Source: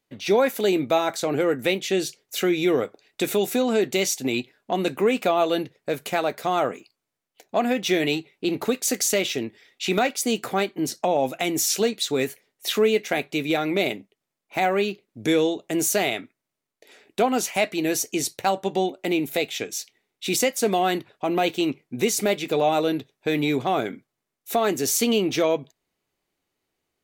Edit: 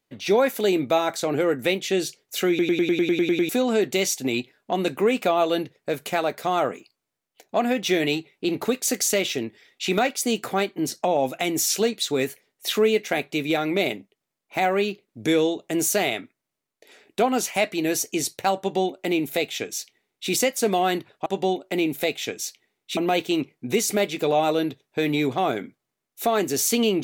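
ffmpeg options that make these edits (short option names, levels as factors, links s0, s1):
-filter_complex "[0:a]asplit=13[s0][s1][s2][s3][s4][s5][s6][s7][s8][s9][s10][s11][s12];[s0]atrim=end=2.592[s13];[s1]atrim=start=2.488:end=2.592[s14];[s2]atrim=start=2.488:end=2.592[s15];[s3]atrim=start=2.488:end=2.592[s16];[s4]atrim=start=2.488:end=2.592[s17];[s5]atrim=start=2.488:end=2.592[s18];[s6]atrim=start=2.488:end=2.592[s19];[s7]atrim=start=2.488:end=2.592[s20];[s8]atrim=start=2.488:end=2.592[s21];[s9]atrim=start=2.488:end=2.592[s22];[s10]atrim=start=3.488:end=21.262[s23];[s11]atrim=start=18.588:end=20.302[s24];[s12]atrim=start=21.258[s25];[s13][s14]acrossfade=d=0.004:c1=hsin:c2=hsin[s26];[s26][s15]acrossfade=d=0.004:c1=hsin:c2=hsin[s27];[s27][s16]acrossfade=d=0.004:c1=hsin:c2=hsin[s28];[s28][s17]acrossfade=d=0.004:c1=hsin:c2=hsin[s29];[s29][s18]acrossfade=d=0.004:c1=hsin:c2=hsin[s30];[s30][s19]acrossfade=d=0.004:c1=hsin:c2=hsin[s31];[s31][s20]acrossfade=d=0.004:c1=hsin:c2=hsin[s32];[s32][s21]acrossfade=d=0.004:c1=hsin:c2=hsin[s33];[s33][s22]acrossfade=d=0.004:c1=hsin:c2=hsin[s34];[s34][s23]acrossfade=d=0.004:c1=hsin:c2=hsin[s35];[s35][s24]acrossfade=d=0.004:c1=hsin:c2=hsin[s36];[s36][s25]acrossfade=d=0.004:c1=hsin:c2=hsin"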